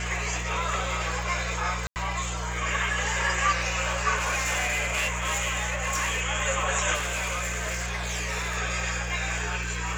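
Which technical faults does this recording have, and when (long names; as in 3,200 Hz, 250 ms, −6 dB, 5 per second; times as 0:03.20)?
surface crackle 78 per second −36 dBFS
mains hum 60 Hz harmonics 3 −33 dBFS
0:01.87–0:01.96: drop-out 89 ms
0:04.16–0:06.22: clipping −23 dBFS
0:06.94–0:08.58: clipping −25.5 dBFS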